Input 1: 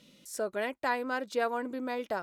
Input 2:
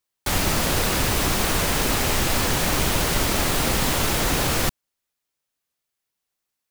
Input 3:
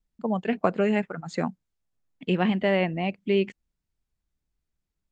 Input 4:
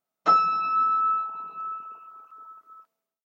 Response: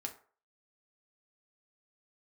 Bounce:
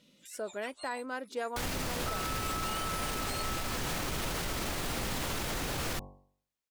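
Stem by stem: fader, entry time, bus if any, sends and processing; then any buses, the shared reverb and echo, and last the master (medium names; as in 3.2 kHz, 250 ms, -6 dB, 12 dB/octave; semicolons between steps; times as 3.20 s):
-5.0 dB, 0.00 s, no send, none
-8.0 dB, 1.30 s, no send, treble shelf 7.9 kHz -4 dB; de-hum 47.86 Hz, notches 23
-12.0 dB, 0.00 s, no send, spectrum inverted on a logarithmic axis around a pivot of 1.3 kHz; comb 6.9 ms, depth 59%; auto duck -11 dB, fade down 0.20 s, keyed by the first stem
-1.5 dB, 1.80 s, no send, compression, threshold -32 dBFS, peak gain reduction 16 dB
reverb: none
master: peak limiter -25 dBFS, peak gain reduction 8.5 dB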